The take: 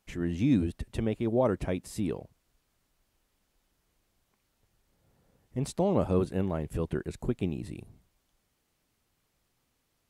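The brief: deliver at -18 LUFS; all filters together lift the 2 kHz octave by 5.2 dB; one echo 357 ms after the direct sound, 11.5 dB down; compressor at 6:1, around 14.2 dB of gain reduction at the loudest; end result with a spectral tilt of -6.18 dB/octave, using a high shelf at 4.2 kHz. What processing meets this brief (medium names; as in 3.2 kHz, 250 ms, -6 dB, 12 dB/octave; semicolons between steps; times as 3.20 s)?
peaking EQ 2 kHz +7.5 dB; treble shelf 4.2 kHz -3.5 dB; compression 6:1, threshold -36 dBFS; delay 357 ms -11.5 dB; trim +23 dB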